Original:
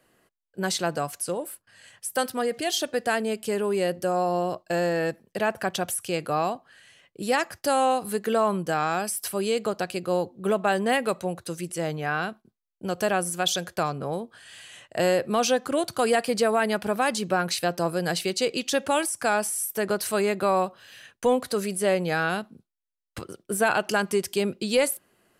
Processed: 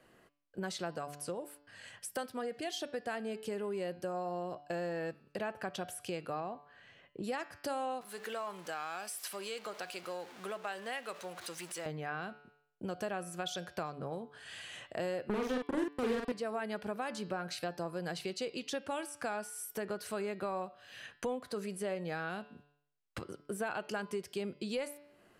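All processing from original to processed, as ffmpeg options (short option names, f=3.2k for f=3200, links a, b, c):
-filter_complex "[0:a]asettb=1/sr,asplit=3[a][b][c];[a]atrim=end=6.404[d];[b]atrim=start=6.4:end=7.24,asetpts=PTS-STARTPTS,afade=t=in:d=0.004:c=qsin,afade=t=out:st=0.836:d=0.004:c=qsin,lowpass=5.4k,highshelf=f=2.1k:g=-9[e];[c]atrim=start=7.236[f];[d][e]acrossfade=d=0.004:c1=hsin:c2=qsin[g];[g][f]acrossfade=d=0.004:c1=qsin:c2=hsin,asettb=1/sr,asplit=3[h][i][j];[h]atrim=end=8.014[k];[i]atrim=start=8.01:end=11.86,asetpts=PTS-STARTPTS,afade=t=in:d=0.004:c=qsin,afade=t=out:st=3.846:d=0.004:c=qsin,aeval=exprs='val(0)+0.5*0.02*sgn(val(0))':c=same,highpass=f=1.5k:p=1[l];[j]atrim=start=11.856[m];[k][l]acrossfade=d=0.004:c1=hsin:c2=qsin[n];[n][m]acrossfade=d=0.004:c1=qsin:c2=hsin,asettb=1/sr,asplit=3[o][p][q];[o]atrim=end=15.294[r];[p]atrim=start=15.29:end=16.32,asetpts=PTS-STARTPTS,afade=t=in:d=0.004:c=qsin,afade=t=out:st=1.026:d=0.004:c=qsin,lowshelf=f=510:t=q:w=3:g=8,acrusher=bits=2:mix=0:aa=0.5,asplit=2[s][t];[t]adelay=44,volume=-3dB[u];[s][u]amix=inputs=2:normalize=0,atrim=end_sample=45423[v];[q]atrim=start=16.316[w];[r][v]acrossfade=d=0.004:c1=hsin:c2=qsin[x];[x][w]acrossfade=d=0.004:c1=qsin:c2=hsin,lowpass=f=3.8k:p=1,bandreject=f=145.1:t=h:w=4,bandreject=f=290.2:t=h:w=4,bandreject=f=435.3:t=h:w=4,bandreject=f=580.4:t=h:w=4,bandreject=f=725.5:t=h:w=4,bandreject=f=870.6:t=h:w=4,bandreject=f=1.0157k:t=h:w=4,bandreject=f=1.1608k:t=h:w=4,bandreject=f=1.3059k:t=h:w=4,bandreject=f=1.451k:t=h:w=4,bandreject=f=1.5961k:t=h:w=4,bandreject=f=1.7412k:t=h:w=4,bandreject=f=1.8863k:t=h:w=4,bandreject=f=2.0314k:t=h:w=4,bandreject=f=2.1765k:t=h:w=4,bandreject=f=2.3216k:t=h:w=4,bandreject=f=2.4667k:t=h:w=4,bandreject=f=2.6118k:t=h:w=4,bandreject=f=2.7569k:t=h:w=4,bandreject=f=2.902k:t=h:w=4,bandreject=f=3.0471k:t=h:w=4,bandreject=f=3.1922k:t=h:w=4,bandreject=f=3.3373k:t=h:w=4,bandreject=f=3.4824k:t=h:w=4,bandreject=f=3.6275k:t=h:w=4,bandreject=f=3.7726k:t=h:w=4,bandreject=f=3.9177k:t=h:w=4,bandreject=f=4.0628k:t=h:w=4,bandreject=f=4.2079k:t=h:w=4,bandreject=f=4.353k:t=h:w=4,bandreject=f=4.4981k:t=h:w=4,bandreject=f=4.6432k:t=h:w=4,bandreject=f=4.7883k:t=h:w=4,bandreject=f=4.9334k:t=h:w=4,bandreject=f=5.0785k:t=h:w=4,bandreject=f=5.2236k:t=h:w=4,bandreject=f=5.3687k:t=h:w=4,bandreject=f=5.5138k:t=h:w=4,acompressor=threshold=-44dB:ratio=2.5,volume=1.5dB"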